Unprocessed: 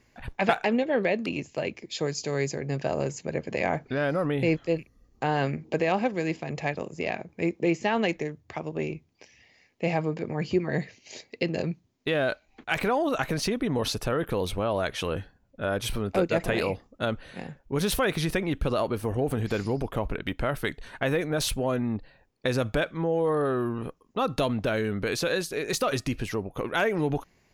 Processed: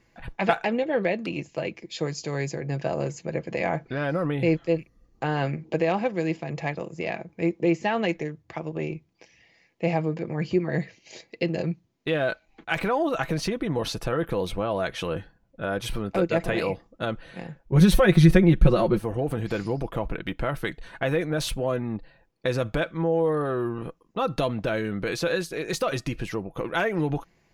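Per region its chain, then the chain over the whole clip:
0:17.72–0:18.99: low-shelf EQ 310 Hz +9.5 dB + comb filter 5.5 ms, depth 85%
whole clip: high-shelf EQ 4,900 Hz −5.5 dB; comb filter 6 ms, depth 38%

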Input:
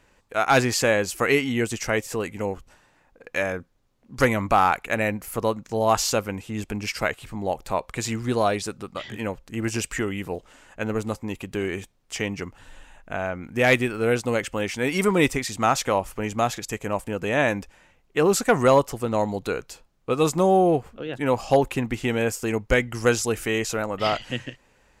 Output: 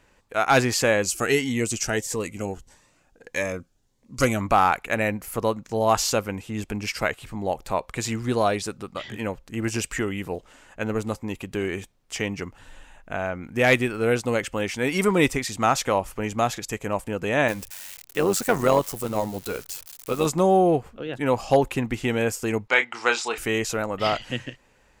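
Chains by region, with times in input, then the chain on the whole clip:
0:01.02–0:04.41: parametric band 7,200 Hz +7.5 dB 1.1 octaves + phaser whose notches keep moving one way rising 1.6 Hz
0:17.48–0:20.26: spike at every zero crossing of −26 dBFS + amplitude modulation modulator 94 Hz, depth 45%
0:22.68–0:23.38: loudspeaker in its box 500–7,200 Hz, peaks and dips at 530 Hz −5 dB, 890 Hz +8 dB, 1,300 Hz +4 dB, 2,300 Hz +6 dB, 3,800 Hz +7 dB, 6,100 Hz −7 dB + double-tracking delay 30 ms −9.5 dB
whole clip: no processing

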